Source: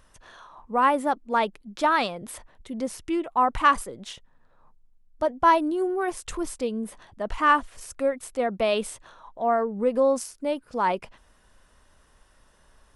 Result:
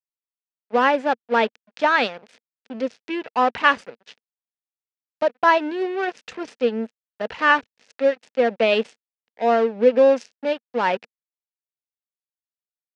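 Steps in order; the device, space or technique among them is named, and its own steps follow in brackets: blown loudspeaker (crossover distortion -36 dBFS; speaker cabinet 200–5400 Hz, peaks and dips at 230 Hz +5 dB, 330 Hz -6 dB, 470 Hz +7 dB, 1100 Hz -7 dB, 1700 Hz +4 dB, 2600 Hz +5 dB); gain +5 dB

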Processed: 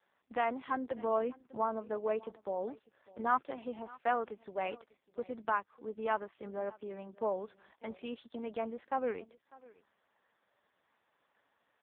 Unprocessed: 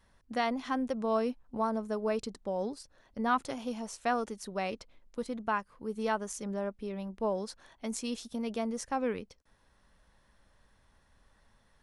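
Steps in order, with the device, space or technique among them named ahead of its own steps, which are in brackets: satellite phone (BPF 340–3300 Hz; echo 0.599 s -22 dB; AMR-NB 5.15 kbps 8000 Hz)

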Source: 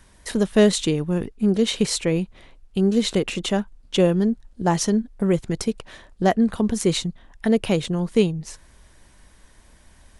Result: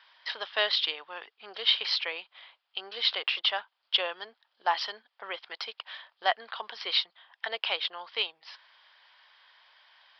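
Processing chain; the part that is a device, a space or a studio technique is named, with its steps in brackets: musical greeting card (downsampling 11025 Hz; HPF 830 Hz 24 dB/oct; bell 3200 Hz +8 dB 0.22 oct)

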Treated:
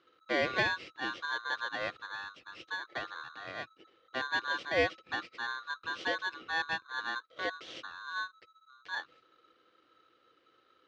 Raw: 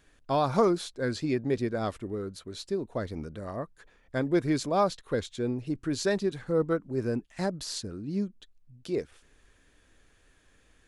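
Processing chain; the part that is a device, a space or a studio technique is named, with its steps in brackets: ring modulator pedal into a guitar cabinet (polarity switched at an audio rate 1300 Hz; speaker cabinet 88–4000 Hz, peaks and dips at 180 Hz -3 dB, 330 Hz +9 dB, 500 Hz +10 dB, 900 Hz -9 dB); gain -5.5 dB

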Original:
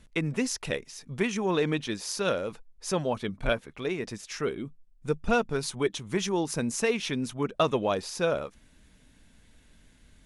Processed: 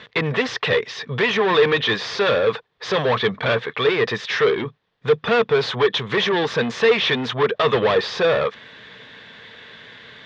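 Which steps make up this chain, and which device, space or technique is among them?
overdrive pedal into a guitar cabinet (overdrive pedal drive 32 dB, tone 3800 Hz, clips at -10 dBFS; speaker cabinet 90–4500 Hz, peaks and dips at 120 Hz +9 dB, 290 Hz -7 dB, 450 Hz +10 dB, 1100 Hz +6 dB, 1800 Hz +8 dB, 3500 Hz +8 dB); gain -4.5 dB

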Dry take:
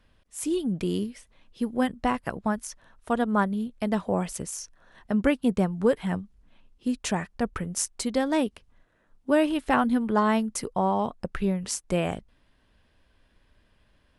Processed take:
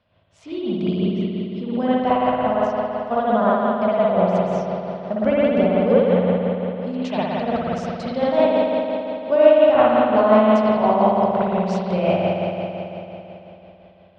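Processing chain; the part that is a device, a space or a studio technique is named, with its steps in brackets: combo amplifier with spring reverb and tremolo (spring tank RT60 3.4 s, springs 55 ms, chirp 30 ms, DRR -9.5 dB; tremolo 5.7 Hz, depth 41%; speaker cabinet 96–4600 Hz, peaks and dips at 99 Hz +5 dB, 310 Hz -8 dB, 630 Hz +10 dB, 1700 Hz -7 dB); gain -1 dB

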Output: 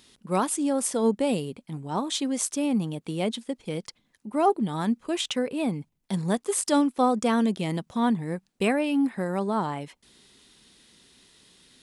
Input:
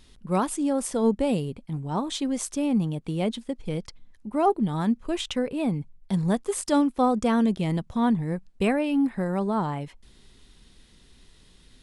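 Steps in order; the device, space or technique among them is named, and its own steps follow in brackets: tilt +1.5 dB/oct; filter by subtraction (in parallel: LPF 240 Hz 12 dB/oct + phase invert)

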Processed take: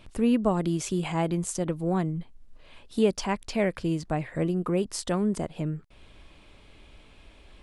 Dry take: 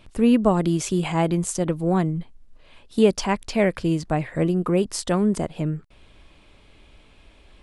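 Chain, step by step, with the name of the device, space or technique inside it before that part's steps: parallel compression (in parallel at 0 dB: compressor, threshold -37 dBFS, peak gain reduction 23.5 dB); on the sum: gain -6.5 dB

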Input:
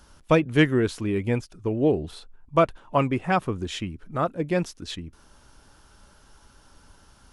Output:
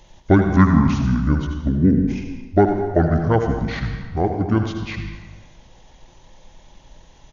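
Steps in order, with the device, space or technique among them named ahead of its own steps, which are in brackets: monster voice (pitch shift -8.5 st; low shelf 230 Hz +3.5 dB; echo 79 ms -10 dB; reverb RT60 1.3 s, pre-delay 84 ms, DRR 6 dB); gain +3.5 dB

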